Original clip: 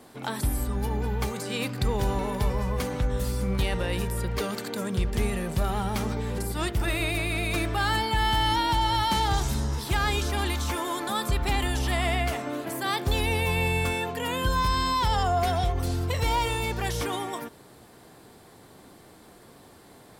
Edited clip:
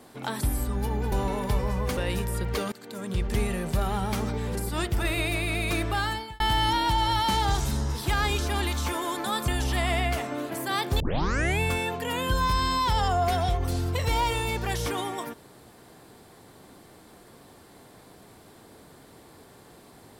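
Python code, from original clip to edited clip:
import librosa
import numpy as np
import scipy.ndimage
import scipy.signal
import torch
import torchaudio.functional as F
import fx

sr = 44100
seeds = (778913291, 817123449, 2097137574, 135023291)

y = fx.edit(x, sr, fx.cut(start_s=1.12, length_s=0.91),
    fx.cut(start_s=2.88, length_s=0.92),
    fx.fade_in_from(start_s=4.55, length_s=0.56, floor_db=-19.0),
    fx.fade_out_span(start_s=7.75, length_s=0.48),
    fx.cut(start_s=11.31, length_s=0.32),
    fx.tape_start(start_s=13.15, length_s=0.6), tone=tone)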